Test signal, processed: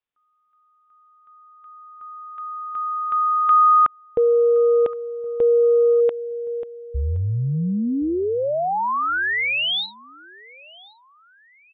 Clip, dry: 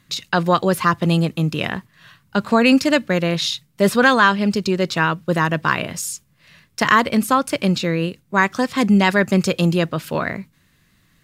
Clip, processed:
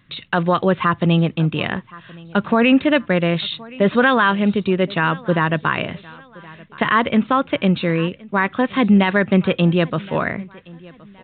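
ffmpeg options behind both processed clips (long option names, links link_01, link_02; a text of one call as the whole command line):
ffmpeg -i in.wav -af "aecho=1:1:1070|2140:0.0668|0.0234,aresample=8000,aresample=44100,alimiter=level_in=6dB:limit=-1dB:release=50:level=0:latency=1,volume=-4.5dB" out.wav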